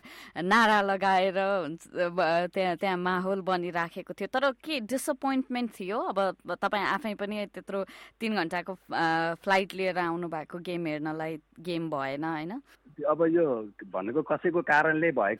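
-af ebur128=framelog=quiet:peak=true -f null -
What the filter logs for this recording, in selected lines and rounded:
Integrated loudness:
  I:         -28.8 LUFS
  Threshold: -38.9 LUFS
Loudness range:
  LRA:         4.6 LU
  Threshold: -49.9 LUFS
  LRA low:   -31.5 LUFS
  LRA high:  -26.9 LUFS
True peak:
  Peak:      -11.5 dBFS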